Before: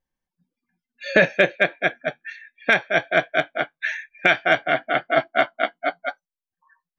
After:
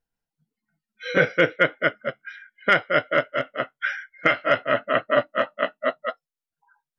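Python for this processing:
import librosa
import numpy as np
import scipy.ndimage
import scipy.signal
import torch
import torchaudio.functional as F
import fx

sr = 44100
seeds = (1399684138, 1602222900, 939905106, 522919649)

y = fx.pitch_heads(x, sr, semitones=-2.0)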